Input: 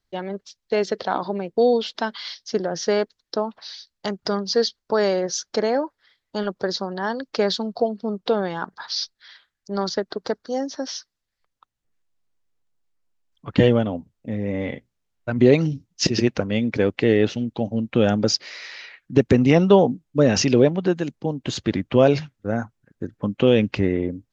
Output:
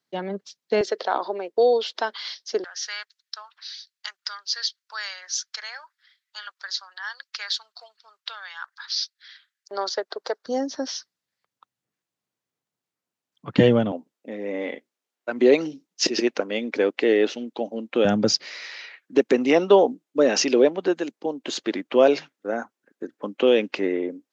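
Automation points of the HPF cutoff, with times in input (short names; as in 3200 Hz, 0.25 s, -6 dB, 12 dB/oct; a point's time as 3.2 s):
HPF 24 dB/oct
150 Hz
from 0.81 s 350 Hz
from 2.64 s 1400 Hz
from 9.71 s 450 Hz
from 10.46 s 120 Hz
from 13.92 s 290 Hz
from 18.05 s 130 Hz
from 18.64 s 290 Hz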